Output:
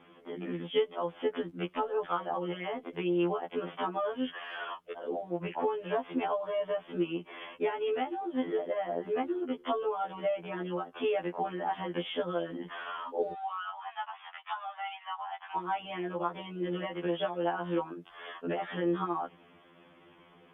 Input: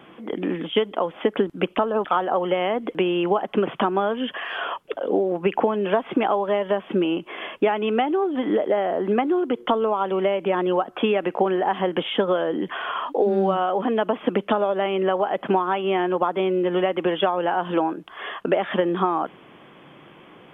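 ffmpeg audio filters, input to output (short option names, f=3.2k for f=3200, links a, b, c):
-filter_complex "[0:a]asettb=1/sr,asplit=3[a][b][c];[a]atrim=end=13.324[d];[b]atrim=start=13.32:end=15.57,asetpts=PTS-STARTPTS,afade=t=in:d=0.004:c=qsin,afade=t=out:st=2.246:d=0.004:c=qsin,asuperpass=centerf=1700:order=20:qfactor=0.55[e];[c]atrim=start=15.566[f];[d][e]acrossfade=d=0.004:c1=hsin:c2=qsin[g];[g][f]acrossfade=d=0.004:c1=qsin:c2=hsin,afftfilt=real='re*2*eq(mod(b,4),0)':imag='im*2*eq(mod(b,4),0)':win_size=2048:overlap=0.75,volume=-8.5dB"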